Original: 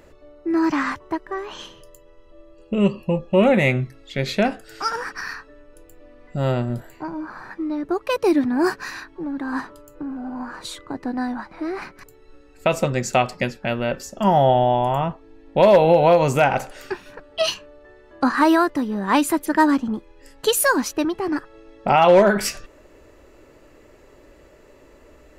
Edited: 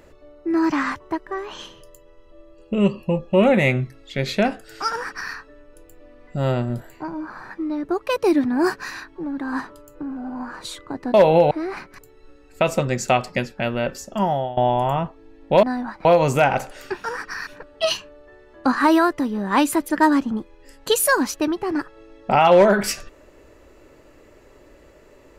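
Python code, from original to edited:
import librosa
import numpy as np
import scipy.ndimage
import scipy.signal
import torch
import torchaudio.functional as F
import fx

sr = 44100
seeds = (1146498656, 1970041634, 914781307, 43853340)

y = fx.edit(x, sr, fx.duplicate(start_s=4.91, length_s=0.43, to_s=17.04),
    fx.swap(start_s=11.14, length_s=0.42, other_s=15.68, other_length_s=0.37),
    fx.fade_out_to(start_s=14.08, length_s=0.54, floor_db=-19.5), tone=tone)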